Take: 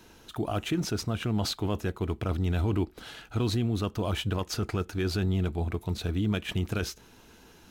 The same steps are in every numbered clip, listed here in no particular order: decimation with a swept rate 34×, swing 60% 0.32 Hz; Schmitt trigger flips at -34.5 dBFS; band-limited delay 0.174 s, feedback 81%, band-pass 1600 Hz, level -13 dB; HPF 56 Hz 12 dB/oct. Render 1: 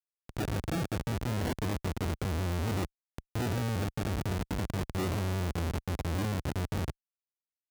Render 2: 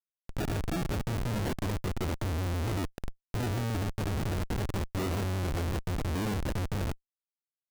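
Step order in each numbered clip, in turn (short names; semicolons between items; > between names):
band-limited delay > decimation with a swept rate > Schmitt trigger > HPF; HPF > decimation with a swept rate > band-limited delay > Schmitt trigger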